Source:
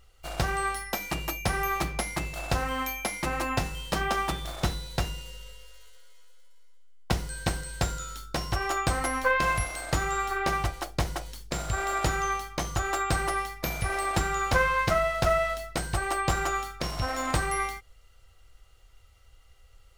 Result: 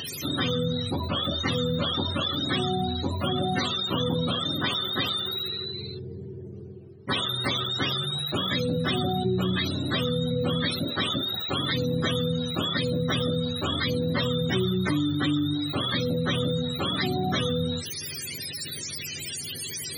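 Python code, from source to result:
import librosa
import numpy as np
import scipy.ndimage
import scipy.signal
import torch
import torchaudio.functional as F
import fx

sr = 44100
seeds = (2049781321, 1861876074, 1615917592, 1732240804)

y = fx.octave_mirror(x, sr, pivot_hz=440.0)
y = fx.highpass(y, sr, hz=320.0, slope=6)
y = fx.env_flatten(y, sr, amount_pct=70)
y = F.gain(torch.from_numpy(y), 2.5).numpy()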